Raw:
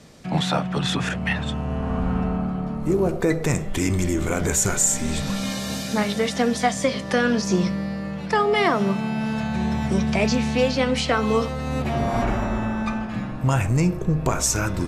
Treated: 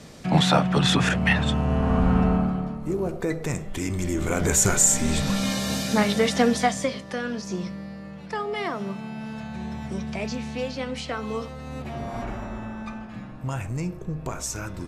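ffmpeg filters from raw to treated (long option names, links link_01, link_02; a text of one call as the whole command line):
ffmpeg -i in.wav -af "volume=11dB,afade=type=out:start_time=2.33:duration=0.47:silence=0.334965,afade=type=in:start_time=3.94:duration=0.7:silence=0.421697,afade=type=out:start_time=6.44:duration=0.62:silence=0.281838" out.wav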